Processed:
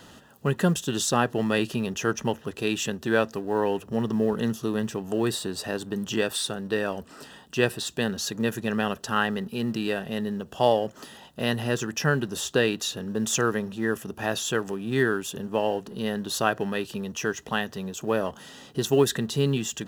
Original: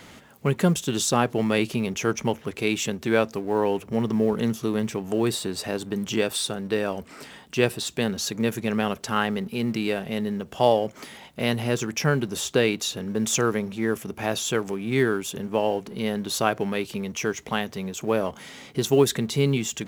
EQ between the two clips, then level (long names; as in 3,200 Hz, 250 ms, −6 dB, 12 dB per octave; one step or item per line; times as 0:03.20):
dynamic equaliser 1,900 Hz, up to +6 dB, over −42 dBFS, Q 1.8
Butterworth band-reject 2,200 Hz, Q 4
−2.0 dB